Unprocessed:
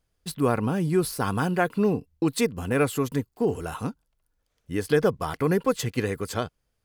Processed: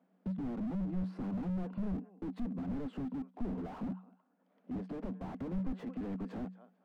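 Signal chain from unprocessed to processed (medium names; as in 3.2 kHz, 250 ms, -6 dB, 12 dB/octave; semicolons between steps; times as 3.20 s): tone controls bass +14 dB, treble -13 dB; peak limiter -11.5 dBFS, peak gain reduction 7 dB; compression 4:1, threshold -35 dBFS, peak gain reduction 16.5 dB; 4.75–5.19 s: valve stage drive 32 dB, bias 0.35; rippled Chebyshev high-pass 180 Hz, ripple 9 dB; tape spacing loss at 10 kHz 28 dB; thinning echo 222 ms, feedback 23%, high-pass 560 Hz, level -21.5 dB; slew-rate limiter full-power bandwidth 0.98 Hz; trim +12.5 dB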